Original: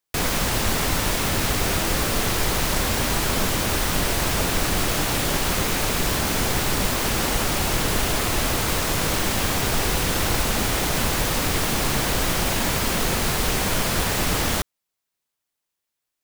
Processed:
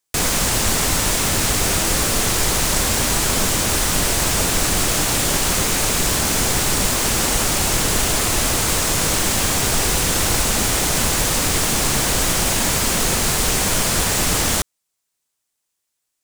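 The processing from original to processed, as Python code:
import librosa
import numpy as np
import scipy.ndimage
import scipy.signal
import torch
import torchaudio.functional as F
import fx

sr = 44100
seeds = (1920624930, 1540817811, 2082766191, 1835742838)

y = fx.peak_eq(x, sr, hz=7900.0, db=8.0, octaves=1.2)
y = F.gain(torch.from_numpy(y), 2.0).numpy()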